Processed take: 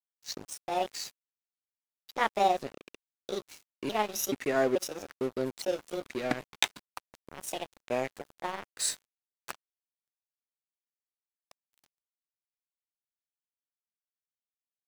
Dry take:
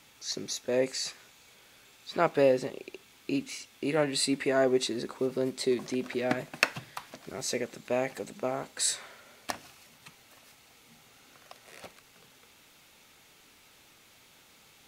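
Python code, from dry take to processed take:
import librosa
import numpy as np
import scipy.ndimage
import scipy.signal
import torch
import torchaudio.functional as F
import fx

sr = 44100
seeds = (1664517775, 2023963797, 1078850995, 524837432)

y = fx.pitch_trill(x, sr, semitones=6.0, every_ms=432)
y = np.sign(y) * np.maximum(np.abs(y) - 10.0 ** (-38.0 / 20.0), 0.0)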